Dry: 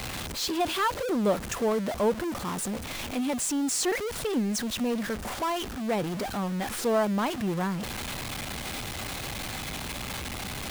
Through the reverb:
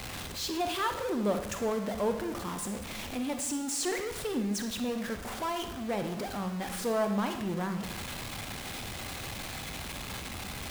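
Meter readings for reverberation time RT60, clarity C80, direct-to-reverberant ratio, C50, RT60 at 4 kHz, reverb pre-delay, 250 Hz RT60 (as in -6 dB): 0.90 s, 10.5 dB, 6.0 dB, 7.5 dB, 0.75 s, 33 ms, 1.1 s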